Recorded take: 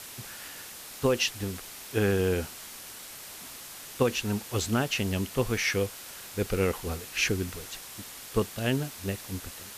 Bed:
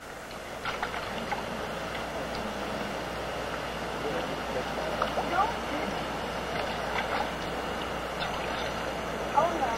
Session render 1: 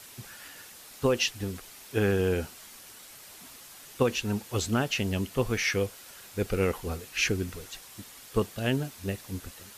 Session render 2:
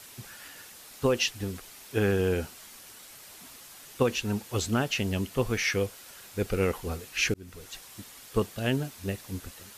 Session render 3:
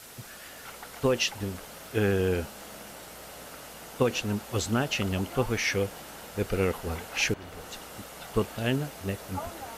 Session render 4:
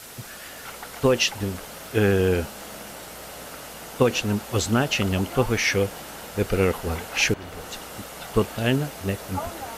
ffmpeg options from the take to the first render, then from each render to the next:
-af "afftdn=nr=6:nf=-44"
-filter_complex "[0:a]asplit=2[s0][s1];[s0]atrim=end=7.34,asetpts=PTS-STARTPTS,afade=t=out:st=7.336:d=0.004:c=hsin[s2];[s1]atrim=start=7.34,asetpts=PTS-STARTPTS,afade=t=in:d=0.4[s3];[s2][s3]concat=n=2:v=0:a=1"
-filter_complex "[1:a]volume=0.237[s0];[0:a][s0]amix=inputs=2:normalize=0"
-af "volume=1.88"

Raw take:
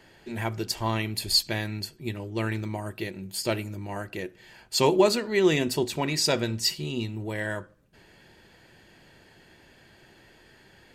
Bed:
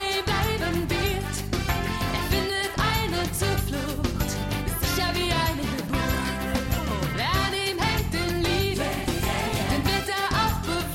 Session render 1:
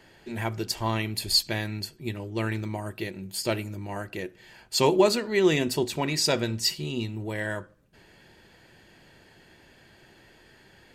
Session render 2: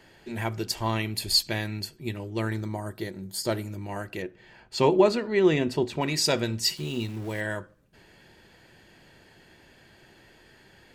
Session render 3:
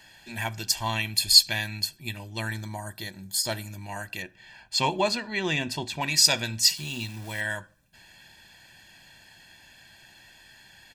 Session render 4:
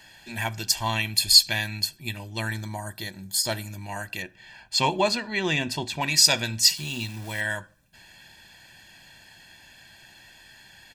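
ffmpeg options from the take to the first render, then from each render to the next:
-af anull
-filter_complex "[0:a]asettb=1/sr,asplit=3[s0][s1][s2];[s0]atrim=end=2.404[s3];[s1]atrim=start=2.4:end=3.64,asetpts=PTS-STARTPTS,afade=t=in:d=0.004:c=qsin,afade=t=out:st=1.236:d=0.004:c=qsin,equalizer=f=2600:w=4.4:g=-15[s4];[s2]atrim=start=3.636[s5];[s3][s4]acrossfade=d=0.004:c1=hsin:c2=qsin[s6];[s6][s5]acrossfade=d=0.004:c1=qsin:c2=hsin,asettb=1/sr,asplit=3[s7][s8][s9];[s7]atrim=end=4.224[s10];[s8]atrim=start=4.22:end=6.01,asetpts=PTS-STARTPTS,afade=t=in:d=0.004:c=qsin,afade=t=out:st=1.786:d=0.004:c=qsin,aemphasis=mode=reproduction:type=75fm[s11];[s9]atrim=start=6.006[s12];[s10][s11]acrossfade=d=0.004:c1=hsin:c2=qsin[s13];[s13][s12]acrossfade=d=0.004:c1=qsin:c2=hsin,asettb=1/sr,asplit=3[s14][s15][s16];[s14]atrim=end=6.774[s17];[s15]atrim=start=6.77:end=7.41,asetpts=PTS-STARTPTS,afade=t=in:d=0.004:c=qsin,afade=t=out:st=0.636:d=0.004:c=qsin,aeval=exprs='val(0)*gte(abs(val(0)),0.0075)':c=same[s18];[s16]atrim=start=7.406[s19];[s17][s18]acrossfade=d=0.004:c1=hsin:c2=qsin[s20];[s20][s19]acrossfade=d=0.004:c1=qsin:c2=hsin"
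-af "tiltshelf=f=1500:g=-6.5,aecho=1:1:1.2:0.63"
-af "volume=1.26,alimiter=limit=0.708:level=0:latency=1"

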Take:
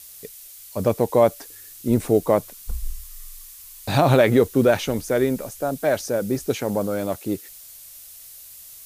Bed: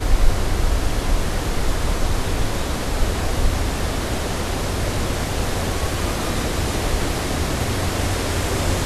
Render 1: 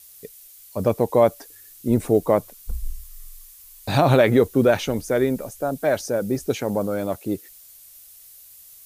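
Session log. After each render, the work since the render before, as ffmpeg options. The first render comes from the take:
-af "afftdn=nr=6:nf=-43"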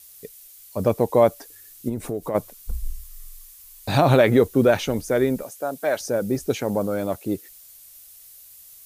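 -filter_complex "[0:a]asplit=3[s0][s1][s2];[s0]afade=t=out:st=1.88:d=0.02[s3];[s1]acompressor=threshold=0.0501:ratio=3:attack=3.2:release=140:knee=1:detection=peak,afade=t=in:st=1.88:d=0.02,afade=t=out:st=2.34:d=0.02[s4];[s2]afade=t=in:st=2.34:d=0.02[s5];[s3][s4][s5]amix=inputs=3:normalize=0,asettb=1/sr,asplit=3[s6][s7][s8];[s6]atrim=end=5.434[s9];[s7]atrim=start=5.43:end=6.01,asetpts=PTS-STARTPTS,afade=t=in:d=0.004:c=qsin,afade=t=out:st=0.576:d=0.004:c=qsin,highpass=f=480:p=1[s10];[s8]atrim=start=6.006[s11];[s9][s10]acrossfade=d=0.004:c1=hsin:c2=qsin[s12];[s12][s11]acrossfade=d=0.004:c1=qsin:c2=hsin"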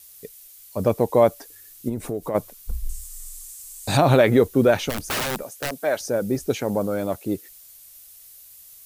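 -filter_complex "[0:a]asettb=1/sr,asplit=3[s0][s1][s2];[s0]atrim=end=2.894[s3];[s1]atrim=start=2.89:end=3.97,asetpts=PTS-STARTPTS,afade=t=in:d=0.004:c=qsin,afade=t=out:st=1.076:d=0.004:c=qsin,equalizer=f=7900:t=o:w=0.92:g=13.5[s4];[s2]atrim=start=3.966[s5];[s3][s4]acrossfade=d=0.004:c1=hsin:c2=qsin[s6];[s6][s5]acrossfade=d=0.004:c1=qsin:c2=hsin,asplit=3[s7][s8][s9];[s7]afade=t=out:st=4.89:d=0.02[s10];[s8]aeval=exprs='(mod(10.6*val(0)+1,2)-1)/10.6':c=same,afade=t=in:st=4.89:d=0.02,afade=t=out:st=5.78:d=0.02[s11];[s9]afade=t=in:st=5.78:d=0.02[s12];[s10][s11][s12]amix=inputs=3:normalize=0"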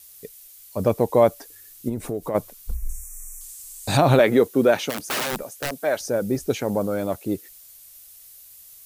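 -filter_complex "[0:a]asettb=1/sr,asplit=3[s0][s1][s2];[s0]atrim=end=2.744[s3];[s1]atrim=start=2.74:end=3.41,asetpts=PTS-STARTPTS,afade=t=in:d=0.004:c=qsin,afade=t=out:st=0.666:d=0.004:c=qsin,asuperstop=centerf=3800:order=20:qfactor=1.3[s4];[s2]atrim=start=3.406[s5];[s3][s4]acrossfade=d=0.004:c1=hsin:c2=qsin[s6];[s6][s5]acrossfade=d=0.004:c1=qsin:c2=hsin,asettb=1/sr,asplit=3[s7][s8][s9];[s7]atrim=end=4.194[s10];[s8]atrim=start=4.19:end=5.33,asetpts=PTS-STARTPTS,afade=t=in:d=0.004:c=qsin,afade=t=out:st=1.136:d=0.004:c=qsin,highpass=190[s11];[s9]atrim=start=5.326[s12];[s10][s11]acrossfade=d=0.004:c1=hsin:c2=qsin[s13];[s13][s12]acrossfade=d=0.004:c1=qsin:c2=hsin"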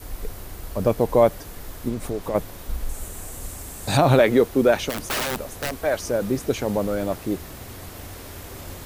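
-filter_complex "[1:a]volume=0.141[s0];[0:a][s0]amix=inputs=2:normalize=0"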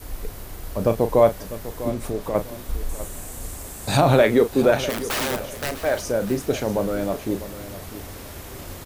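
-filter_complex "[0:a]asplit=2[s0][s1];[s1]adelay=36,volume=0.299[s2];[s0][s2]amix=inputs=2:normalize=0,aecho=1:1:649|1298|1947:0.2|0.0499|0.0125"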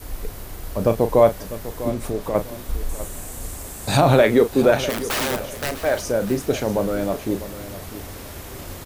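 -af "volume=1.19,alimiter=limit=0.708:level=0:latency=1"

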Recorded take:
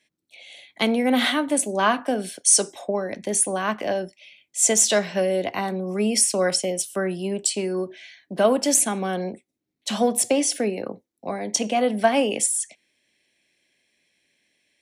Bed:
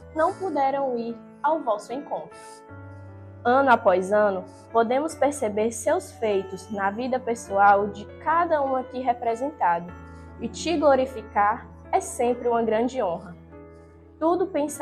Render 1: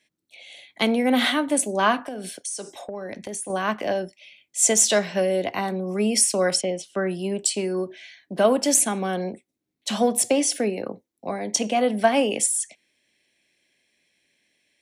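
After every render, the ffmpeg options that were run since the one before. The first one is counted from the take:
-filter_complex "[0:a]asettb=1/sr,asplit=3[s0][s1][s2];[s0]atrim=end=1.994[s3];[s1]atrim=start=1.99:end=3.5,asetpts=PTS-STARTPTS,afade=t=in:d=0.004:c=qsin,afade=t=out:st=1.506:d=0.004:c=qsin,acompressor=threshold=0.0355:ratio=6:attack=3.2:release=140:knee=1:detection=peak[s4];[s2]atrim=start=3.496[s5];[s3][s4]acrossfade=d=0.004:c1=hsin:c2=qsin[s6];[s6][s5]acrossfade=d=0.004:c1=qsin:c2=hsin,asettb=1/sr,asplit=3[s7][s8][s9];[s7]atrim=end=6.614[s10];[s8]atrim=start=6.61:end=7.07,asetpts=PTS-STARTPTS,afade=t=in:d=0.004:c=qsin,afade=t=out:st=0.456:d=0.004:c=qsin,lowpass=3900[s11];[s9]atrim=start=7.066[s12];[s10][s11]acrossfade=d=0.004:c1=hsin:c2=qsin[s13];[s13][s12]acrossfade=d=0.004:c1=qsin:c2=hsin"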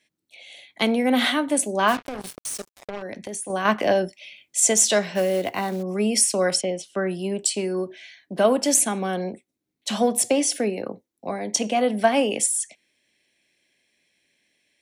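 -filter_complex "[0:a]asplit=3[s0][s1][s2];[s0]afade=t=out:st=1.87:d=0.02[s3];[s1]acrusher=bits=4:mix=0:aa=0.5,afade=t=in:st=1.87:d=0.02,afade=t=out:st=3.01:d=0.02[s4];[s2]afade=t=in:st=3.01:d=0.02[s5];[s3][s4][s5]amix=inputs=3:normalize=0,asettb=1/sr,asplit=3[s6][s7][s8];[s6]atrim=end=3.654[s9];[s7]atrim=start=3.65:end=4.6,asetpts=PTS-STARTPTS,afade=t=in:d=0.004:c=qsin,afade=t=out:st=0.946:d=0.004:c=qsin,acontrast=30[s10];[s8]atrim=start=4.596[s11];[s9][s10]acrossfade=d=0.004:c1=hsin:c2=qsin[s12];[s12][s11]acrossfade=d=0.004:c1=qsin:c2=hsin,asettb=1/sr,asplit=3[s13][s14][s15];[s13]atrim=end=5.154[s16];[s14]atrim=start=5.15:end=5.83,asetpts=PTS-STARTPTS,afade=t=in:d=0.004:c=qsin,afade=t=out:st=0.676:d=0.004:c=qsin,acrusher=bits=5:mode=log:mix=0:aa=0.000001[s17];[s15]atrim=start=5.826[s18];[s16][s17]acrossfade=d=0.004:c1=hsin:c2=qsin[s19];[s19][s18]acrossfade=d=0.004:c1=qsin:c2=hsin"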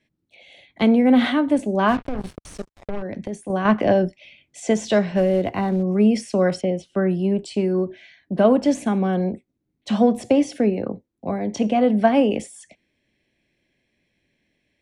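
-filter_complex "[0:a]aemphasis=mode=reproduction:type=riaa,acrossover=split=5500[s0][s1];[s1]acompressor=threshold=0.00891:ratio=4:attack=1:release=60[s2];[s0][s2]amix=inputs=2:normalize=0"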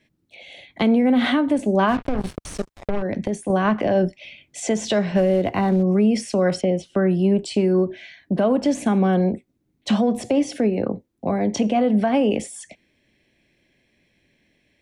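-filter_complex "[0:a]asplit=2[s0][s1];[s1]acompressor=threshold=0.0501:ratio=6,volume=1[s2];[s0][s2]amix=inputs=2:normalize=0,alimiter=limit=0.299:level=0:latency=1:release=111"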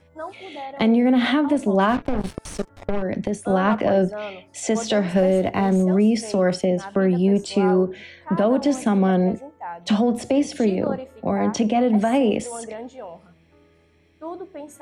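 -filter_complex "[1:a]volume=0.266[s0];[0:a][s0]amix=inputs=2:normalize=0"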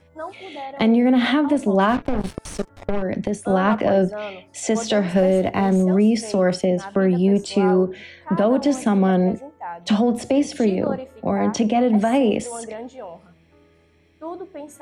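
-af "volume=1.12"

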